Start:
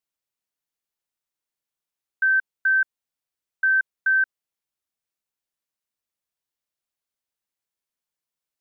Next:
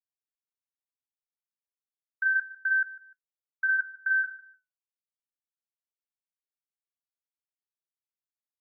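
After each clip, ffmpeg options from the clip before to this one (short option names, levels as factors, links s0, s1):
-af "afftdn=nr=20:nf=-48,flanger=delay=6.1:depth=6.4:regen=-66:speed=0.33:shape=sinusoidal,aecho=1:1:150|300:0.119|0.0333,volume=0.841"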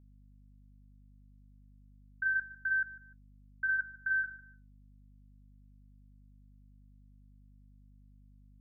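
-af "aeval=exprs='val(0)+0.00251*(sin(2*PI*50*n/s)+sin(2*PI*2*50*n/s)/2+sin(2*PI*3*50*n/s)/3+sin(2*PI*4*50*n/s)/4+sin(2*PI*5*50*n/s)/5)':c=same,volume=0.531"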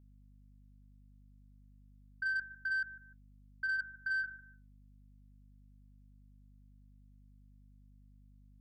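-af "asoftclip=type=tanh:threshold=0.0447,volume=0.841"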